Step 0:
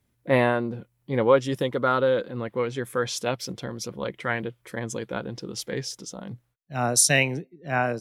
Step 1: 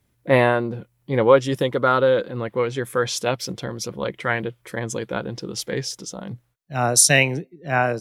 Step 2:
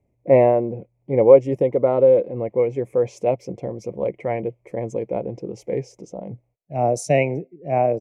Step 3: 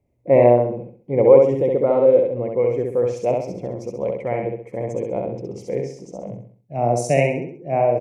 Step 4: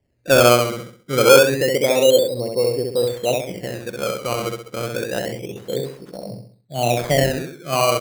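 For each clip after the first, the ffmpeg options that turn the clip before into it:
-af "equalizer=f=240:w=7.1:g=-4,volume=4.5dB"
-af "firequalizer=gain_entry='entry(220,0);entry(390,4);entry(640,7);entry(1500,-26);entry(2200,-3);entry(3500,-27);entry(6400,-14);entry(11000,-24)':delay=0.05:min_phase=1,volume=-1.5dB"
-af "aecho=1:1:66|132|198|264|330:0.708|0.283|0.113|0.0453|0.0181,volume=-1dB"
-af "acrusher=samples=17:mix=1:aa=0.000001:lfo=1:lforange=17:lforate=0.28"

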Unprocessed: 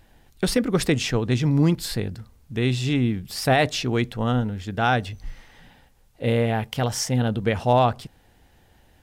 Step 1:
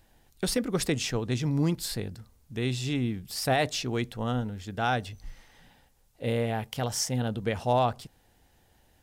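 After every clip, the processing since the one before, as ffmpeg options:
-filter_complex "[0:a]bass=f=250:g=0,treble=f=4k:g=6,acrossover=split=940[a][b];[a]crystalizer=i=8.5:c=0[c];[c][b]amix=inputs=2:normalize=0,volume=-7.5dB"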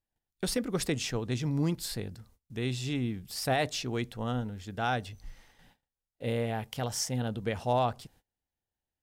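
-af "agate=range=-26dB:threshold=-56dB:ratio=16:detection=peak,volume=-3dB"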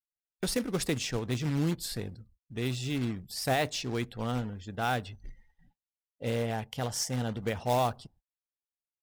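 -af "acrusher=bits=3:mode=log:mix=0:aa=0.000001,afftdn=nr=25:nf=-53"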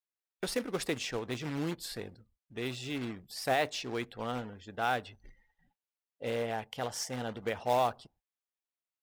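-af "bass=f=250:g=-11,treble=f=4k:g=-6"

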